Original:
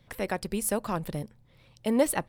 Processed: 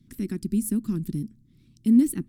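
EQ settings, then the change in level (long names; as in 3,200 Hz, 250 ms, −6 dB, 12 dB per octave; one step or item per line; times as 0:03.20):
parametric band 12,000 Hz +10 dB 2.1 octaves
dynamic equaliser 5,500 Hz, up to −7 dB, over −40 dBFS, Q 1.1
drawn EQ curve 110 Hz 0 dB, 250 Hz +11 dB, 360 Hz +3 dB, 560 Hz −30 dB, 820 Hz −28 dB, 1,300 Hz −16 dB, 2,900 Hz −14 dB, 6,500 Hz −7 dB, 10,000 Hz −11 dB
0.0 dB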